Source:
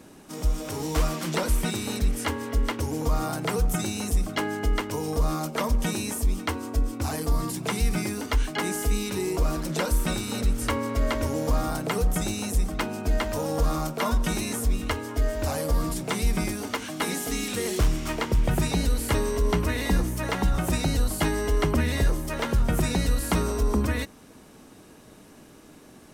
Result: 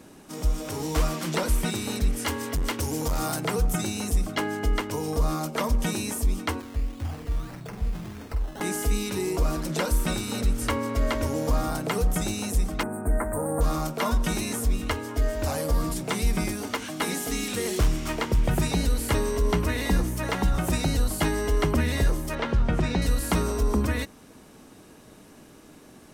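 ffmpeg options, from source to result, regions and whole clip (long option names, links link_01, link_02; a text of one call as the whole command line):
ffmpeg -i in.wav -filter_complex "[0:a]asettb=1/sr,asplit=3[link_01][link_02][link_03];[link_01]atrim=end=2.254[link_04];[link_02]atrim=start=2.25:end=3.41,asetpts=PTS-STARTPTS,afade=type=in:duration=0.004:curve=qsin,afade=type=out:start_time=1.156:duration=0.004:curve=qsin,highshelf=frequency=3100:gain=8,asoftclip=type=hard:threshold=-22dB[link_05];[link_03]atrim=start=3.406[link_06];[link_04][link_05]acrossfade=duration=0.004:curve1=hsin:curve2=qsin[link_07];[link_07][link_06]acrossfade=duration=0.004:curve1=qsin:curve2=hsin,asettb=1/sr,asplit=3[link_08][link_09][link_10];[link_08]atrim=end=6.604[link_11];[link_09]atrim=start=6.6:end=8.61,asetpts=PTS-STARTPTS,afade=type=in:duration=0.004:curve=qsin,afade=type=out:start_time=2.006:duration=0.004:curve=qsin,acrusher=samples=15:mix=1:aa=0.000001:lfo=1:lforange=9:lforate=1.7,asplit=2[link_12][link_13];[link_13]adelay=47,volume=-7.5dB[link_14];[link_12][link_14]amix=inputs=2:normalize=0,atrim=end_sample=88641,acrossover=split=120|1100[link_15][link_16][link_17];[link_15]acompressor=threshold=-24dB:ratio=4[link_18];[link_16]acompressor=threshold=-42dB:ratio=4[link_19];[link_17]acompressor=threshold=-49dB:ratio=4[link_20];[link_18][link_19][link_20]amix=inputs=3:normalize=0[link_21];[link_10]atrim=start=8.606[link_22];[link_11][link_21]acrossfade=duration=0.004:curve1=hsin:curve2=qsin[link_23];[link_23][link_22]acrossfade=duration=0.004:curve1=qsin:curve2=hsin,asettb=1/sr,asplit=3[link_24][link_25][link_26];[link_24]atrim=end=12.834[link_27];[link_25]atrim=start=12.83:end=13.61,asetpts=PTS-STARTPTS,afade=type=in:duration=0.004:curve=qsin,afade=type=out:start_time=0.776:duration=0.004:curve=qsin,asuperstop=centerf=4100:order=8:qfactor=0.6,equalizer=frequency=8800:width_type=o:width=0.24:gain=11.5[link_28];[link_26]atrim=start=13.606[link_29];[link_27][link_28]acrossfade=duration=0.004:curve1=hsin:curve2=qsin[link_30];[link_30][link_29]acrossfade=duration=0.004:curve1=qsin:curve2=hsin,asettb=1/sr,asplit=3[link_31][link_32][link_33];[link_31]atrim=end=22.354[link_34];[link_32]atrim=start=22.35:end=23.02,asetpts=PTS-STARTPTS,afade=type=in:duration=0.004:curve=qsin,afade=type=out:start_time=0.666:duration=0.004:curve=qsin,lowpass=4100,aeval=exprs='sgn(val(0))*max(abs(val(0))-0.00119,0)':channel_layout=same[link_35];[link_33]atrim=start=23.016[link_36];[link_34][link_35]acrossfade=duration=0.004:curve1=hsin:curve2=qsin[link_37];[link_37][link_36]acrossfade=duration=0.004:curve1=qsin:curve2=hsin" out.wav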